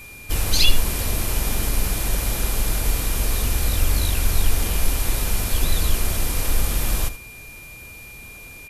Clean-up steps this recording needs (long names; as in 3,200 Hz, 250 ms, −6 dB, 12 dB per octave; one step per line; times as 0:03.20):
notch filter 2,400 Hz, Q 30
echo removal 78 ms −14 dB